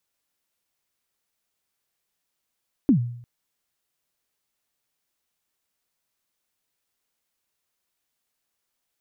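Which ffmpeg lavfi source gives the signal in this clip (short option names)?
-f lavfi -i "aevalsrc='0.282*pow(10,-3*t/0.65)*sin(2*PI*(310*0.099/log(120/310)*(exp(log(120/310)*min(t,0.099)/0.099)-1)+120*max(t-0.099,0)))':d=0.35:s=44100"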